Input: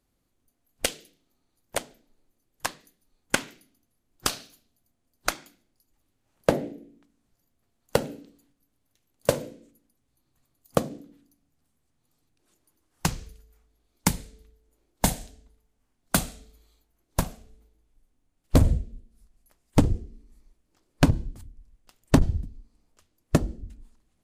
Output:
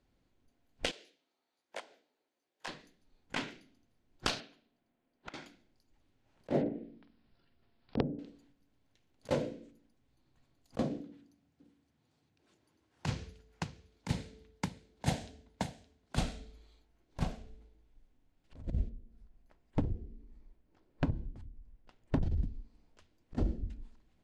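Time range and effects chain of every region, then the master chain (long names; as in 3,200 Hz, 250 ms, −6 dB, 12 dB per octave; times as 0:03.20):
0:00.91–0:02.68: high-pass filter 450 Hz + downward compressor 1.5 to 1, threshold −49 dBFS + micro pitch shift up and down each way 40 cents
0:04.40–0:05.34: three-way crossover with the lows and the highs turned down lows −17 dB, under 160 Hz, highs −16 dB, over 3,600 Hz + downward compressor 20 to 1, threshold −43 dBFS
0:06.61–0:08.19: treble cut that deepens with the level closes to 340 Hz, closed at −28 dBFS + bad sample-rate conversion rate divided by 4×, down none, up filtered + double-tracking delay 48 ms −10 dB
0:11.03–0:16.16: high-pass filter 70 Hz 24 dB per octave + single-tap delay 568 ms −13 dB
0:18.89–0:22.23: high-shelf EQ 2,600 Hz −10.5 dB + downward compressor 1.5 to 1, threshold −53 dBFS
whole clip: low-pass filter 4,300 Hz 12 dB per octave; notch filter 1,200 Hz, Q 11; compressor whose output falls as the input rises −27 dBFS, ratio −0.5; level −3 dB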